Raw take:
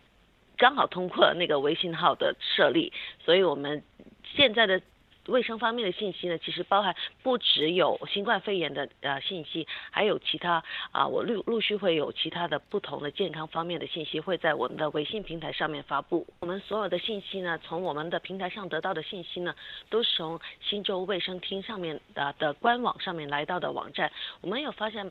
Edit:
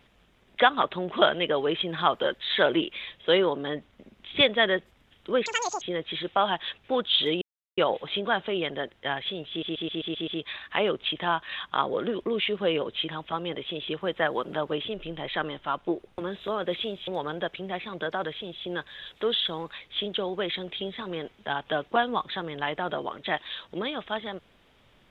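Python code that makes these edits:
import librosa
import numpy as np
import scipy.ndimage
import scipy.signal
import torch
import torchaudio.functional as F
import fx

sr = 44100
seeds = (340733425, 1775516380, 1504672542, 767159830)

y = fx.edit(x, sr, fx.speed_span(start_s=5.46, length_s=0.71, speed=2.0),
    fx.insert_silence(at_s=7.77, length_s=0.36),
    fx.stutter(start_s=9.49, slice_s=0.13, count=7),
    fx.cut(start_s=12.3, length_s=1.03),
    fx.cut(start_s=17.32, length_s=0.46), tone=tone)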